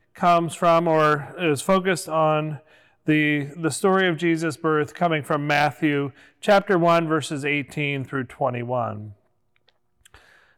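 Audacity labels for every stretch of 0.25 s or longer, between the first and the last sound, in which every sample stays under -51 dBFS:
9.140000	9.560000	silence
9.700000	10.050000	silence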